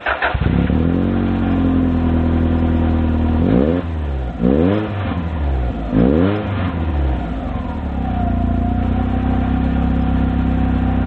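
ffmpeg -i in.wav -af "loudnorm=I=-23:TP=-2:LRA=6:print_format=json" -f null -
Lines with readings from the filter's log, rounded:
"input_i" : "-17.8",
"input_tp" : "-2.7",
"input_lra" : "2.6",
"input_thresh" : "-27.8",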